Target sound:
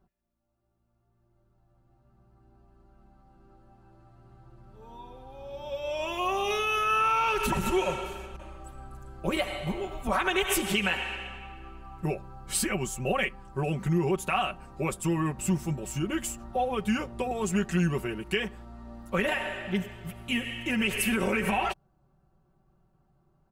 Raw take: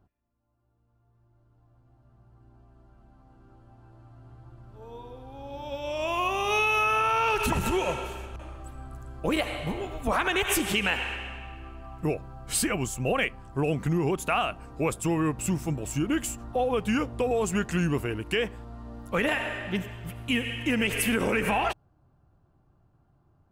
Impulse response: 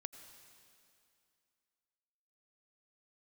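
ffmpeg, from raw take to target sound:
-af "aecho=1:1:5.3:0.78,volume=-3.5dB"

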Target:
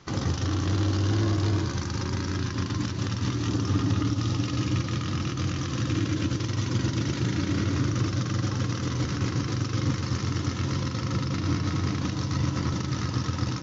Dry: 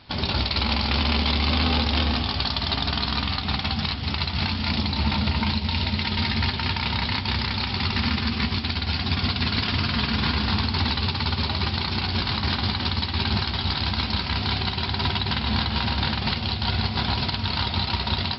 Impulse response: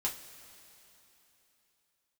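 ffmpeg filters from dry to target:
-filter_complex "[0:a]highshelf=f=2.5k:g=-10.5,acrossover=split=310[a][b];[b]acompressor=threshold=-34dB:ratio=6[c];[a][c]amix=inputs=2:normalize=0,asetrate=59535,aresample=44100"

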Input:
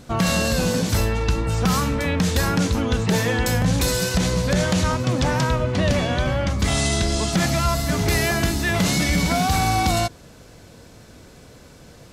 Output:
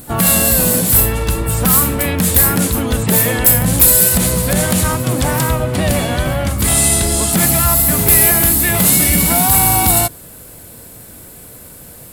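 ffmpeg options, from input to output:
-filter_complex "[0:a]aexciter=amount=14.6:drive=2.4:freq=8.5k,asplit=2[a][b];[b]asetrate=55563,aresample=44100,atempo=0.793701,volume=-10dB[c];[a][c]amix=inputs=2:normalize=0,acontrast=30,volume=-1dB"

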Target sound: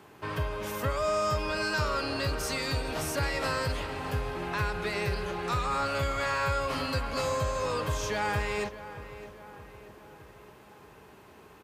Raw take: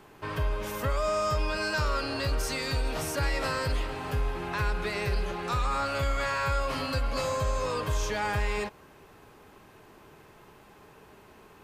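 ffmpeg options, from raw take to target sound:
-filter_complex "[0:a]highpass=f=58:w=0.5412,highpass=f=58:w=1.3066,asplit=2[a][b];[b]adelay=618,lowpass=f=2.9k:p=1,volume=-14dB,asplit=2[c][d];[d]adelay=618,lowpass=f=2.9k:p=1,volume=0.54,asplit=2[e][f];[f]adelay=618,lowpass=f=2.9k:p=1,volume=0.54,asplit=2[g][h];[h]adelay=618,lowpass=f=2.9k:p=1,volume=0.54,asplit=2[i][j];[j]adelay=618,lowpass=f=2.9k:p=1,volume=0.54[k];[c][e][g][i][k]amix=inputs=5:normalize=0[l];[a][l]amix=inputs=2:normalize=0"

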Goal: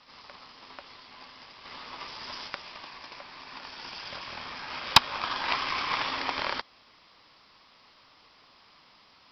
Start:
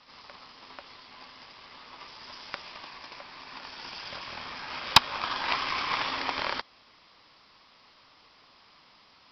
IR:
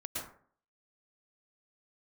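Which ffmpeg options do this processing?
-filter_complex "[0:a]asettb=1/sr,asplit=3[a][b][c];[a]atrim=end=1.654[d];[b]atrim=start=1.65:end=2.48,asetpts=PTS-STARTPTS,afade=t=in:d=0.004:c=qsin,afade=t=out:st=0.826:d=0.004:c=qsin,acontrast=34[e];[c]atrim=start=2.476[f];[d][e]acrossfade=d=0.004:c1=hsin:c2=qsin[g];[g][f]acrossfade=d=0.004:c1=qsin:c2=hsin"

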